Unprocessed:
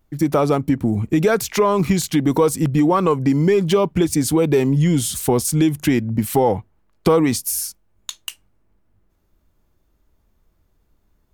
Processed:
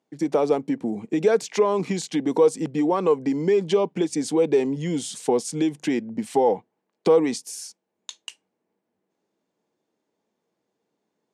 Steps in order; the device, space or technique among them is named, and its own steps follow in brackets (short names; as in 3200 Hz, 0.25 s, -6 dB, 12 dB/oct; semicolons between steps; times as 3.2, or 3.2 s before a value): television speaker (speaker cabinet 190–8300 Hz, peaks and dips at 460 Hz +7 dB, 800 Hz +4 dB, 1300 Hz -6 dB); gain -6.5 dB